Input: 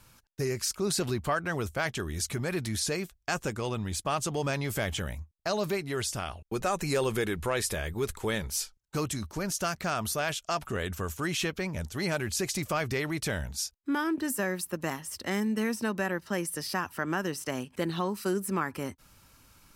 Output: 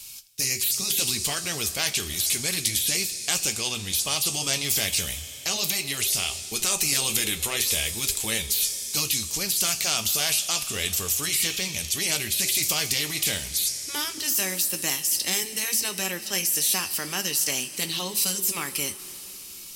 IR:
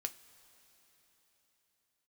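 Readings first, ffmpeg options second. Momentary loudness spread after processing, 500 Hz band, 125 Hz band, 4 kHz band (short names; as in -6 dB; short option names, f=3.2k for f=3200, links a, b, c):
5 LU, -5.5 dB, -4.0 dB, +13.0 dB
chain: -filter_complex "[1:a]atrim=start_sample=2205,asetrate=48510,aresample=44100[a];[0:a][a]afir=irnorm=-1:irlink=0,aexciter=amount=9.5:drive=5.8:freq=2.3k,afftfilt=real='re*lt(hypot(re,im),0.2)':imag='im*lt(hypot(re,im),0.2)':win_size=1024:overlap=0.75"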